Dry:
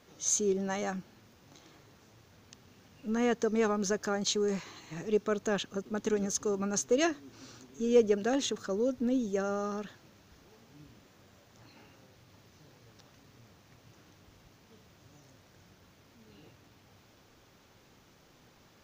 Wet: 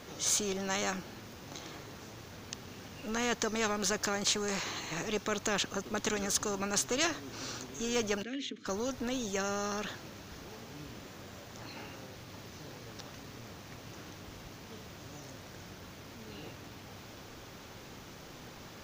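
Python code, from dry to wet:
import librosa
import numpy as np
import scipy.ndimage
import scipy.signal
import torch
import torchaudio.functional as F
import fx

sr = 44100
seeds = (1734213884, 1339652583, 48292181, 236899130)

y = fx.vowel_filter(x, sr, vowel='i', at=(8.22, 8.65), fade=0.02)
y = fx.spectral_comp(y, sr, ratio=2.0)
y = F.gain(torch.from_numpy(y), -2.0).numpy()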